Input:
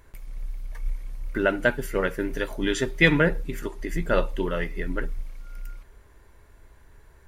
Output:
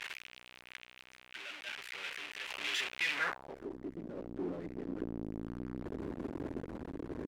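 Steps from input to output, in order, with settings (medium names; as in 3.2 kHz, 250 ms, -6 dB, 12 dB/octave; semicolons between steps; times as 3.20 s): one-bit comparator; random-step tremolo 1.2 Hz, depth 65%; band-pass sweep 2.6 kHz -> 290 Hz, 3.12–3.69 s; trim +2 dB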